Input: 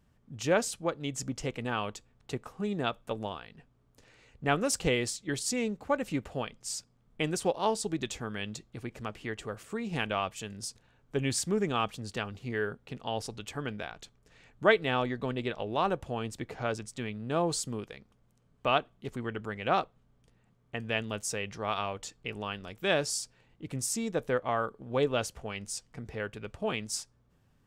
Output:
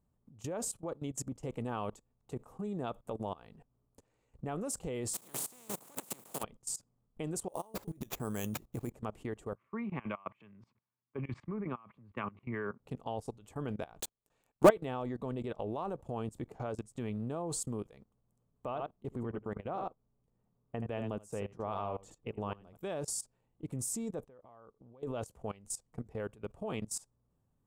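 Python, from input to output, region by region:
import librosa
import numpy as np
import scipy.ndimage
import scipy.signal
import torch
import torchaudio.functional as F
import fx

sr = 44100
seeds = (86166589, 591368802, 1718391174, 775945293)

y = fx.spec_flatten(x, sr, power=0.25, at=(5.13, 6.42), fade=0.02)
y = fx.highpass(y, sr, hz=130.0, slope=24, at=(5.13, 6.42), fade=0.02)
y = fx.over_compress(y, sr, threshold_db=-38.0, ratio=-1.0, at=(5.13, 6.42), fade=0.02)
y = fx.chain(y, sr, fx.peak_eq(hz=11000.0, db=7.5, octaves=1.2),
    fx.over_compress(threshold_db=-36.0, ratio=-0.5),
    fx.sample_hold(seeds[0], rate_hz=9400.0, jitter_pct=0), at=(7.48, 8.91))
y = fx.chain(y, sr, fx.cabinet(low_hz=120.0, low_slope=24, high_hz=2500.0, hz=(150.0, 290.0, 470.0, 740.0, 1100.0, 2200.0), db=(-7, -5, -10, -8, 8, 10)),
    fx.over_compress(threshold_db=-35.0, ratio=-1.0),
    fx.band_widen(depth_pct=100), at=(9.55, 12.8))
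y = fx.chain(y, sr, fx.low_shelf(hz=280.0, db=-11.5),
    fx.notch(hz=2000.0, q=9.3),
    fx.leveller(passes=5), at=(14.0, 14.69))
y = fx.chain(y, sr, fx.high_shelf(hz=2500.0, db=-8.5),
    fx.echo_single(ms=78, db=-9.0), at=(18.66, 22.76))
y = fx.chain(y, sr, fx.level_steps(step_db=23),
    fx.air_absorb(metres=80.0), at=(24.24, 25.03))
y = fx.band_shelf(y, sr, hz=2900.0, db=-11.0, octaves=2.3)
y = fx.level_steps(y, sr, step_db=20)
y = F.gain(torch.from_numpy(y), 3.0).numpy()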